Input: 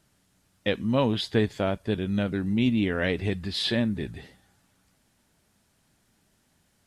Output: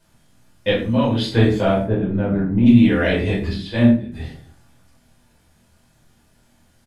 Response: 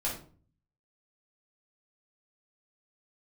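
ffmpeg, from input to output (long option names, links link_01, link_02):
-filter_complex "[0:a]asettb=1/sr,asplit=3[link_01][link_02][link_03];[link_01]atrim=end=0.704[link_04];[link_02]atrim=start=0.7:end=1.24,asetpts=PTS-STARTPTS,afade=type=in:duration=0.004:curve=qsin,afade=type=out:start_time=0.536:duration=0.004:curve=qsin,acompressor=threshold=-27dB:ratio=2[link_05];[link_03]atrim=start=1.236[link_06];[link_04][link_05]acrossfade=duration=0.004:curve1=hsin:curve2=qsin[link_07];[link_07][link_06]acrossfade=duration=0.004:curve1=qsin:curve2=hsin,asplit=3[link_08][link_09][link_10];[link_08]afade=type=out:start_time=1.83:duration=0.02[link_11];[link_09]lowpass=1200,afade=type=in:start_time=1.83:duration=0.02,afade=type=out:start_time=2.65:duration=0.02[link_12];[link_10]afade=type=in:start_time=2.65:duration=0.02[link_13];[link_11][link_12][link_13]amix=inputs=3:normalize=0,asettb=1/sr,asplit=3[link_14][link_15][link_16];[link_14]atrim=end=3.534[link_17];[link_15]atrim=start=3.53:end=4.12,asetpts=PTS-STARTPTS,afade=type=in:duration=0.004:curve=qsin,afade=type=out:start_time=0.586:duration=0.004:curve=qsin,agate=range=-17dB:threshold=-24dB:ratio=16:detection=peak[link_18];[link_16]atrim=start=4.116[link_19];[link_17][link_18]acrossfade=duration=0.004:curve1=hsin:curve2=qsin[link_20];[link_20][link_19]acrossfade=duration=0.004:curve1=qsin:curve2=hsin,asplit=2[link_21][link_22];[link_22]adelay=25,volume=-7dB[link_23];[link_21][link_23]amix=inputs=2:normalize=0[link_24];[1:a]atrim=start_sample=2205[link_25];[link_24][link_25]afir=irnorm=-1:irlink=0,volume=2dB"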